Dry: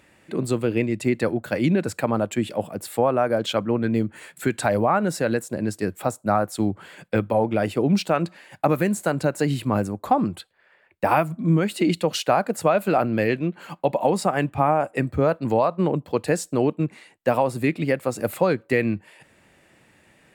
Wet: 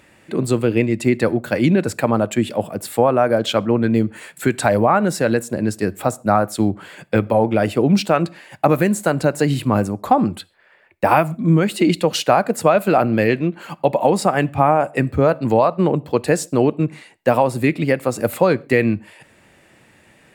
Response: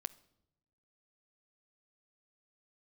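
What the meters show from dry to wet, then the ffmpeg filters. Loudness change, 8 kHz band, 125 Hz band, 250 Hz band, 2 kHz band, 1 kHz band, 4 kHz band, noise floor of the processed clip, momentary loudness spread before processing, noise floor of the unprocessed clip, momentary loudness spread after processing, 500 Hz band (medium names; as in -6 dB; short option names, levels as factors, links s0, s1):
+5.0 dB, +5.0 dB, +5.0 dB, +5.0 dB, +5.0 dB, +5.0 dB, +5.0 dB, -53 dBFS, 6 LU, -60 dBFS, 6 LU, +5.0 dB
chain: -filter_complex "[0:a]asplit=2[s0][s1];[1:a]atrim=start_sample=2205,afade=t=out:st=0.2:d=0.01,atrim=end_sample=9261[s2];[s1][s2]afir=irnorm=-1:irlink=0,volume=1.5[s3];[s0][s3]amix=inputs=2:normalize=0,volume=0.841"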